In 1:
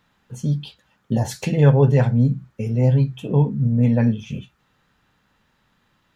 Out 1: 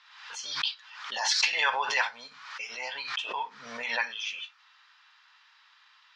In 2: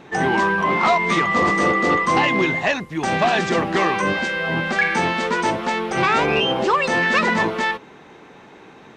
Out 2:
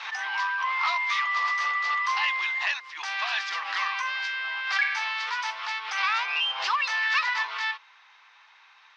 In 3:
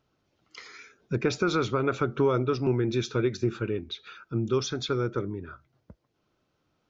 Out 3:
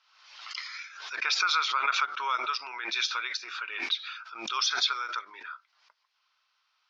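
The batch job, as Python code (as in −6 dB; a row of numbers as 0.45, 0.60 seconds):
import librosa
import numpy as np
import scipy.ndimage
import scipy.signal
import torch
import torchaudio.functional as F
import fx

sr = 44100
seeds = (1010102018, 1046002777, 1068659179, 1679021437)

y = scipy.signal.sosfilt(scipy.signal.cheby1(3, 1.0, [990.0, 5200.0], 'bandpass', fs=sr, output='sos'), x)
y = fx.high_shelf(y, sr, hz=2400.0, db=9.0)
y = fx.pre_swell(y, sr, db_per_s=61.0)
y = y * 10.0 ** (-12 / 20.0) / np.max(np.abs(y))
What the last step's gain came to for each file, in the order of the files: +4.0, −9.0, +3.0 decibels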